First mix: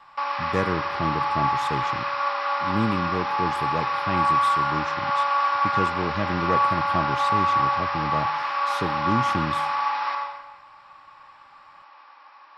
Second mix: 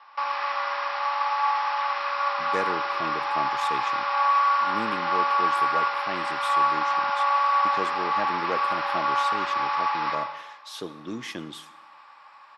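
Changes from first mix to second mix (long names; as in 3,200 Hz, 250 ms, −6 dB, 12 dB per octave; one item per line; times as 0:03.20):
speech: entry +2.00 s
master: add Bessel high-pass filter 460 Hz, order 2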